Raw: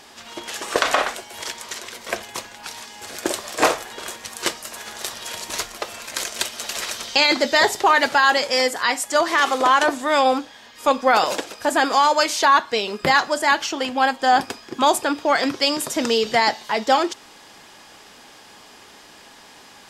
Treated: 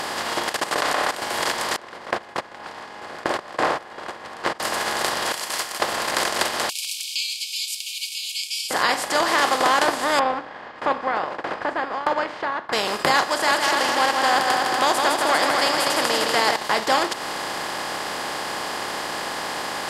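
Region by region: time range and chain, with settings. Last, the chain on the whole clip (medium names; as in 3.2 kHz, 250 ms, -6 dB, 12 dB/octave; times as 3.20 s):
0.49–1.22 s: comb 6.8 ms, depth 30% + level held to a coarse grid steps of 15 dB
1.76–4.60 s: gate -29 dBFS, range -24 dB + low-pass 1.6 kHz + compression 2:1, threshold -25 dBFS
5.32–5.80 s: pre-emphasis filter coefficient 0.97 + band-stop 3.8 kHz, Q 14
6.69–8.71 s: brick-wall FIR high-pass 2.2 kHz + differentiator + feedback delay 156 ms, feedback 40%, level -21 dB
10.19–12.73 s: low-pass 1.8 kHz 24 dB/octave + sawtooth tremolo in dB decaying 1.6 Hz, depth 24 dB
13.23–16.56 s: bass shelf 350 Hz -10 dB + multi-head delay 80 ms, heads second and third, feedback 49%, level -8 dB
whole clip: spectral levelling over time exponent 0.4; transient shaper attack 0 dB, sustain -6 dB; trim -7 dB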